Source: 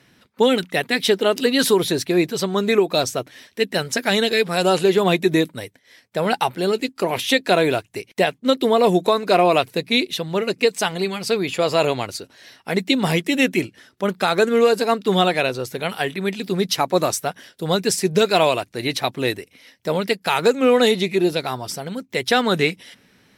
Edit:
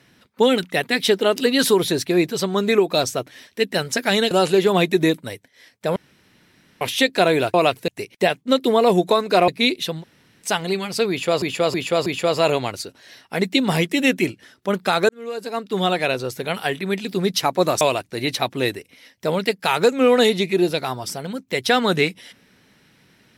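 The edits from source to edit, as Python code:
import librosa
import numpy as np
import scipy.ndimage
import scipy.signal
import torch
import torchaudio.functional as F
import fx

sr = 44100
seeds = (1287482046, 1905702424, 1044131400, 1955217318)

y = fx.edit(x, sr, fx.cut(start_s=4.31, length_s=0.31),
    fx.room_tone_fill(start_s=6.27, length_s=0.85),
    fx.move(start_s=9.45, length_s=0.34, to_s=7.85),
    fx.room_tone_fill(start_s=10.32, length_s=0.43, crossfade_s=0.06),
    fx.repeat(start_s=11.41, length_s=0.32, count=4),
    fx.fade_in_span(start_s=14.44, length_s=1.1),
    fx.cut(start_s=17.16, length_s=1.27), tone=tone)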